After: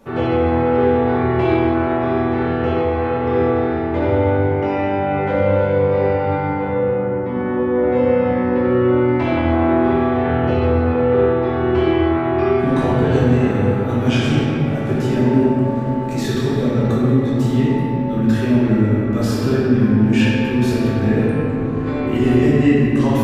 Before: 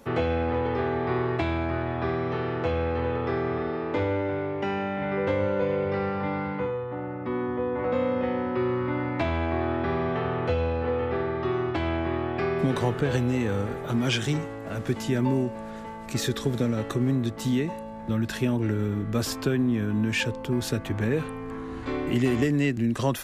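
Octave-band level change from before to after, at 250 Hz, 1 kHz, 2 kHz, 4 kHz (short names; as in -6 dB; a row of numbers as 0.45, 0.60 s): +11.0, +9.5, +6.5, +3.5 dB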